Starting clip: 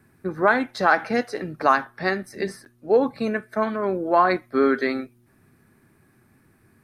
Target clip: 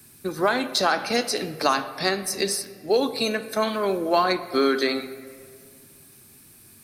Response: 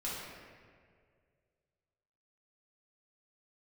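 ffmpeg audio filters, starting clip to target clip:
-filter_complex "[0:a]acrossover=split=280|2000[a][b][c];[a]acompressor=threshold=-36dB:ratio=4[d];[b]acompressor=threshold=-19dB:ratio=4[e];[c]acompressor=threshold=-40dB:ratio=4[f];[d][e][f]amix=inputs=3:normalize=0,aexciter=amount=3.7:drive=9.5:freq=2.7k,asplit=2[g][h];[1:a]atrim=start_sample=2205,lowpass=5k[i];[h][i]afir=irnorm=-1:irlink=0,volume=-12.5dB[j];[g][j]amix=inputs=2:normalize=0"

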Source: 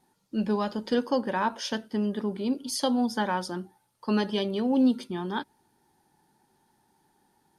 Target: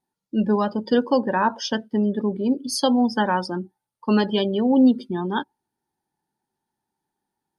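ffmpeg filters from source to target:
-af "afftdn=nr=21:nf=-37,volume=6.5dB"

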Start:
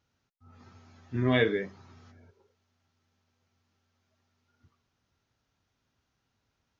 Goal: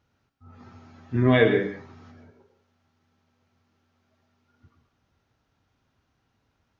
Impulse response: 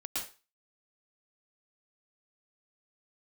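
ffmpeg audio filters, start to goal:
-filter_complex "[0:a]highshelf=f=3.5k:g=-10,asplit=2[a][b];[1:a]atrim=start_sample=2205[c];[b][c]afir=irnorm=-1:irlink=0,volume=-7.5dB[d];[a][d]amix=inputs=2:normalize=0,volume=5dB"

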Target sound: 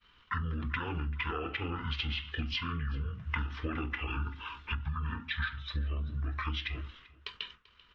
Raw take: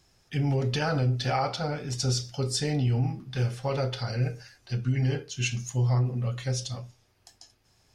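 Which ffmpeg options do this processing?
-filter_complex "[0:a]agate=range=-33dB:threshold=-57dB:ratio=3:detection=peak,lowpass=5.6k,highshelf=f=1.6k:t=q:w=3:g=7,acompressor=threshold=-37dB:ratio=16,asetrate=25476,aresample=44100,atempo=1.73107,asplit=2[a][b];[b]aecho=0:1:389:0.0841[c];[a][c]amix=inputs=2:normalize=0,volume=6dB"

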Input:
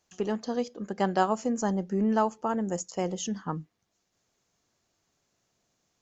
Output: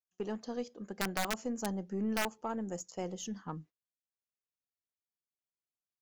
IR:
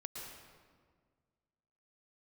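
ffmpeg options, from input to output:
-af "agate=range=-25dB:threshold=-46dB:ratio=16:detection=peak,aeval=exprs='(mod(5.96*val(0)+1,2)-1)/5.96':c=same,aeval=exprs='0.168*(cos(1*acos(clip(val(0)/0.168,-1,1)))-cos(1*PI/2))+0.0075*(cos(4*acos(clip(val(0)/0.168,-1,1)))-cos(4*PI/2))':c=same,volume=-8dB"

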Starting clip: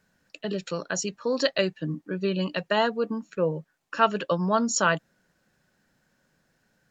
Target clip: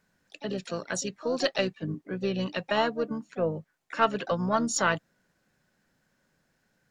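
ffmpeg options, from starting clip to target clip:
-filter_complex "[0:a]aeval=exprs='0.501*(cos(1*acos(clip(val(0)/0.501,-1,1)))-cos(1*PI/2))+0.0126*(cos(4*acos(clip(val(0)/0.501,-1,1)))-cos(4*PI/2))':c=same,asplit=3[a][b][c];[b]asetrate=29433,aresample=44100,atempo=1.49831,volume=-16dB[d];[c]asetrate=58866,aresample=44100,atempo=0.749154,volume=-13dB[e];[a][d][e]amix=inputs=3:normalize=0,volume=-3dB"

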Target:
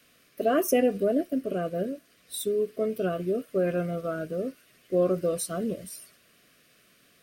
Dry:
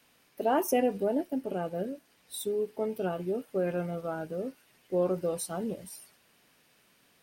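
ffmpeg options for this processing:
-af "asuperstop=centerf=870:order=8:qfactor=2.7,volume=4dB"

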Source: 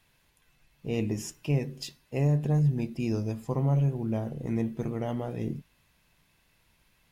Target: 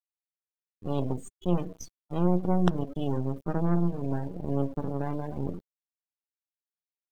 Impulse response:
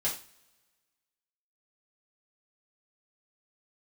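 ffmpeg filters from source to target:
-af "acrusher=bits=4:dc=4:mix=0:aa=0.000001,afftdn=nr=21:nf=-39,asetrate=53981,aresample=44100,atempo=0.816958,volume=3.5dB"

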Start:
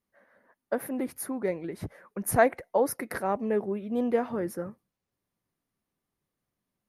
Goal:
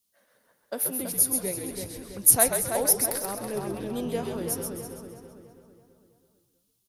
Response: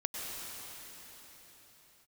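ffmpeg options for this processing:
-filter_complex "[0:a]bandreject=f=148.8:t=h:w=4,bandreject=f=297.6:t=h:w=4,bandreject=f=446.4:t=h:w=4,bandreject=f=595.2:t=h:w=4,bandreject=f=744:t=h:w=4,bandreject=f=892.8:t=h:w=4,bandreject=f=1.0416k:t=h:w=4,bandreject=f=1.1904k:t=h:w=4,bandreject=f=1.3392k:t=h:w=4,bandreject=f=1.488k:t=h:w=4,bandreject=f=1.6368k:t=h:w=4,bandreject=f=1.7856k:t=h:w=4,bandreject=f=1.9344k:t=h:w=4,bandreject=f=2.0832k:t=h:w=4,bandreject=f=2.232k:t=h:w=4,bandreject=f=2.3808k:t=h:w=4,bandreject=f=2.5296k:t=h:w=4,bandreject=f=2.6784k:t=h:w=4,bandreject=f=2.8272k:t=h:w=4,bandreject=f=2.976k:t=h:w=4,bandreject=f=3.1248k:t=h:w=4,bandreject=f=3.2736k:t=h:w=4,bandreject=f=3.4224k:t=h:w=4,bandreject=f=3.5712k:t=h:w=4,bandreject=f=3.72k:t=h:w=4,bandreject=f=3.8688k:t=h:w=4,bandreject=f=4.0176k:t=h:w=4,bandreject=f=4.1664k:t=h:w=4,bandreject=f=4.3152k:t=h:w=4,bandreject=f=4.464k:t=h:w=4,bandreject=f=4.6128k:t=h:w=4,bandreject=f=4.7616k:t=h:w=4,bandreject=f=4.9104k:t=h:w=4,bandreject=f=5.0592k:t=h:w=4,bandreject=f=5.208k:t=h:w=4,bandreject=f=5.3568k:t=h:w=4,bandreject=f=5.5056k:t=h:w=4,bandreject=f=5.6544k:t=h:w=4,bandreject=f=5.8032k:t=h:w=4,bandreject=f=5.952k:t=h:w=4,asplit=2[a][b];[b]asplit=5[c][d][e][f][g];[c]adelay=132,afreqshift=-74,volume=-5.5dB[h];[d]adelay=264,afreqshift=-148,volume=-13.9dB[i];[e]adelay=396,afreqshift=-222,volume=-22.3dB[j];[f]adelay=528,afreqshift=-296,volume=-30.7dB[k];[g]adelay=660,afreqshift=-370,volume=-39.1dB[l];[h][i][j][k][l]amix=inputs=5:normalize=0[m];[a][m]amix=inputs=2:normalize=0,aexciter=amount=6.9:drive=5.8:freq=2.8k,asplit=2[n][o];[o]adelay=328,lowpass=f=3.8k:p=1,volume=-6dB,asplit=2[p][q];[q]adelay=328,lowpass=f=3.8k:p=1,volume=0.49,asplit=2[r][s];[s]adelay=328,lowpass=f=3.8k:p=1,volume=0.49,asplit=2[t][u];[u]adelay=328,lowpass=f=3.8k:p=1,volume=0.49,asplit=2[v][w];[w]adelay=328,lowpass=f=3.8k:p=1,volume=0.49,asplit=2[x][y];[y]adelay=328,lowpass=f=3.8k:p=1,volume=0.49[z];[p][r][t][v][x][z]amix=inputs=6:normalize=0[aa];[n][aa]amix=inputs=2:normalize=0,asettb=1/sr,asplit=3[ab][ac][ad];[ab]atrim=end=3.104[ae];[ac]atrim=start=3.1:end=3.57,asetpts=PTS-STARTPTS,afade=t=in:d=0.004:c=qsin,afade=t=out:st=0.466:d=0.004:c=qsin,aeval=exprs='(tanh(2.24*val(0)+0.55)-tanh(0.55))/2.24':c=same[af];[ad]atrim=start=3.566[ag];[ae][af]acrossfade=d=0.004:c1=hsin:c2=qsin[ah];[ah][ag]acrossfade=d=0.004:c1=qsin:c2=hsin,volume=-5dB"

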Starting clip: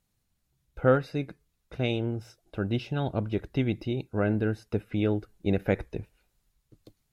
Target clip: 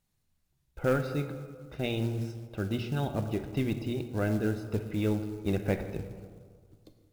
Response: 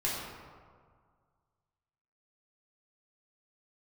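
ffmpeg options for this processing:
-filter_complex "[0:a]asoftclip=type=tanh:threshold=-14dB,asplit=2[a][b];[1:a]atrim=start_sample=2205[c];[b][c]afir=irnorm=-1:irlink=0,volume=-11.5dB[d];[a][d]amix=inputs=2:normalize=0,acrusher=bits=6:mode=log:mix=0:aa=0.000001,volume=-4dB"

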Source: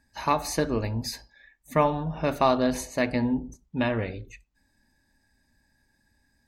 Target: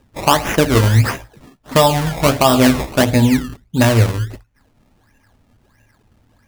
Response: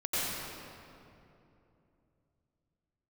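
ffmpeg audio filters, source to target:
-filter_complex "[0:a]equalizer=f=110:t=o:w=0.28:g=11.5,acrusher=samples=20:mix=1:aa=0.000001:lfo=1:lforange=20:lforate=1.5,asettb=1/sr,asplit=3[a][b][c];[a]atrim=end=0.714[d];[b]atrim=start=0.71:end=3.03,asetpts=PTS-STARTPTS,afade=t=in:d=0.004:c=qsin,afade=t=out:st=2.316:d=0.004:c=qsin,asplit=2[e][f];[f]adelay=15,volume=-5.5dB[g];[e][g]amix=inputs=2:normalize=0,atrim=end_sample=102312[h];[c]atrim=start=3.026[i];[d][h]acrossfade=d=0.004:c1=hsin:c2=qsin[j];[j][i]acrossfade=d=0.004:c1=qsin:c2=hsin,alimiter=level_in=12.5dB:limit=-1dB:release=50:level=0:latency=1,volume=-1dB"

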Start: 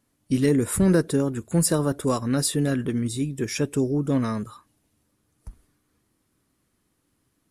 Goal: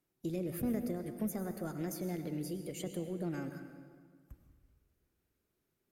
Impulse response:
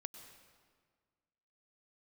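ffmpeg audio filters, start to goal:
-filter_complex "[0:a]acrossover=split=230[a][b];[b]acompressor=threshold=-29dB:ratio=6[c];[a][c]amix=inputs=2:normalize=0,asetrate=56007,aresample=44100[d];[1:a]atrim=start_sample=2205[e];[d][e]afir=irnorm=-1:irlink=0,volume=-8dB"

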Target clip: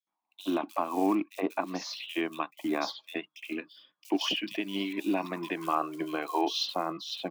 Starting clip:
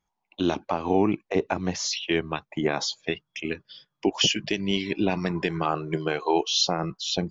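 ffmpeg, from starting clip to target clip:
-filter_complex "[0:a]highpass=f=220:w=0.5412,highpass=f=220:w=1.3066,equalizer=f=300:t=q:w=4:g=8,equalizer=f=430:t=q:w=4:g=-6,equalizer=f=670:t=q:w=4:g=5,equalizer=f=1.1k:t=q:w=4:g=10,equalizer=f=2.5k:t=q:w=4:g=4,equalizer=f=3.7k:t=q:w=4:g=4,lowpass=f=5.2k:w=0.5412,lowpass=f=5.2k:w=1.3066,acrusher=bits=6:mode=log:mix=0:aa=0.000001,acrossover=split=3300[a][b];[a]adelay=70[c];[c][b]amix=inputs=2:normalize=0,volume=-7.5dB"

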